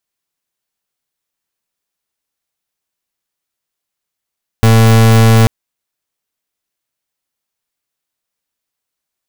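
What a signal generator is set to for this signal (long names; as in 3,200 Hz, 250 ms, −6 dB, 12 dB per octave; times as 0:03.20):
pulse wave 112 Hz, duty 36% −6.5 dBFS 0.84 s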